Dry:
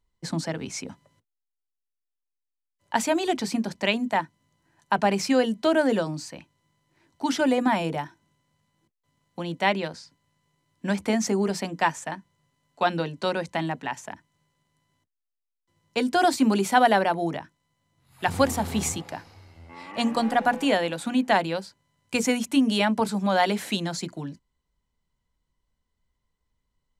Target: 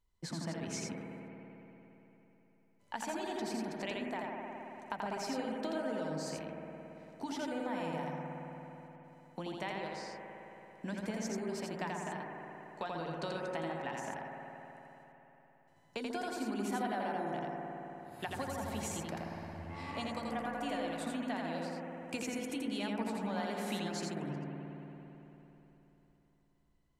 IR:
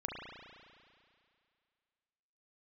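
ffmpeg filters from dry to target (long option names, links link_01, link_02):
-filter_complex "[0:a]acompressor=threshold=-35dB:ratio=5,asplit=2[link_01][link_02];[1:a]atrim=start_sample=2205,asetrate=27783,aresample=44100,adelay=84[link_03];[link_02][link_03]afir=irnorm=-1:irlink=0,volume=-3dB[link_04];[link_01][link_04]amix=inputs=2:normalize=0,volume=-4.5dB"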